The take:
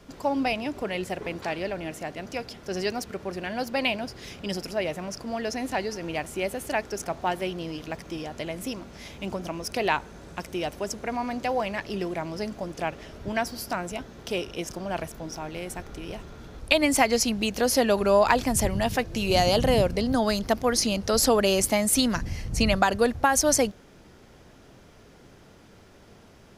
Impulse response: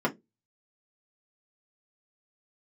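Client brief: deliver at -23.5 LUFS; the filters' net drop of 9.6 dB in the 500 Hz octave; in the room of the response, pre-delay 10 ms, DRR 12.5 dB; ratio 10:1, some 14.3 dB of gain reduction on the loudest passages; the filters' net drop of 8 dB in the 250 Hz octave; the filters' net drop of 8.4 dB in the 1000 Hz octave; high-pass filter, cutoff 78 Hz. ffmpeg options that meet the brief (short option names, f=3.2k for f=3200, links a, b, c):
-filter_complex "[0:a]highpass=78,equalizer=f=250:t=o:g=-7.5,equalizer=f=500:t=o:g=-8,equalizer=f=1k:t=o:g=-7.5,acompressor=threshold=-34dB:ratio=10,asplit=2[a][b];[1:a]atrim=start_sample=2205,adelay=10[c];[b][c]afir=irnorm=-1:irlink=0,volume=-23.5dB[d];[a][d]amix=inputs=2:normalize=0,volume=15dB"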